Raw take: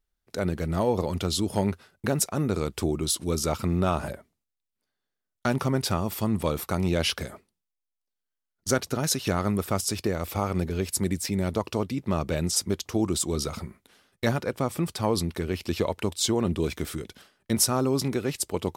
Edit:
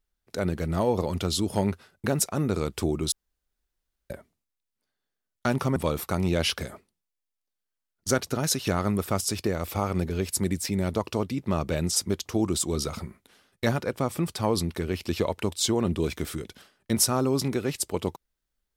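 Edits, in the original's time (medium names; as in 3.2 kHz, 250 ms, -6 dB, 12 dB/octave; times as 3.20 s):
3.12–4.10 s: room tone
5.76–6.36 s: delete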